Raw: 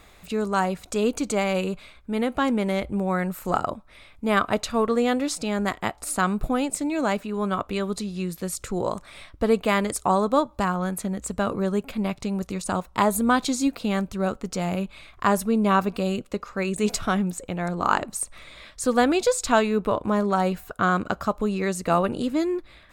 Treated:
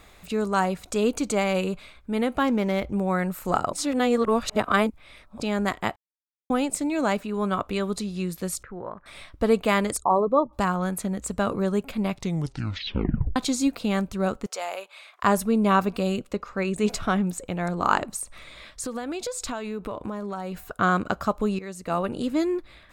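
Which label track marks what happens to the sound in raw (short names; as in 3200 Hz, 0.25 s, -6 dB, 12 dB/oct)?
2.390000	2.930000	decimation joined by straight lines rate divided by 3×
3.730000	5.400000	reverse
5.960000	6.500000	mute
8.630000	9.060000	ladder low-pass 1900 Hz, resonance 60%
9.970000	10.530000	formant sharpening exponent 2
12.160000	12.160000	tape stop 1.20 s
14.460000	15.230000	HPF 530 Hz 24 dB/oct
16.330000	17.240000	high shelf 5200 Hz -7 dB
18.160000	20.650000	compressor, threshold -28 dBFS
21.590000	22.390000	fade in, from -15 dB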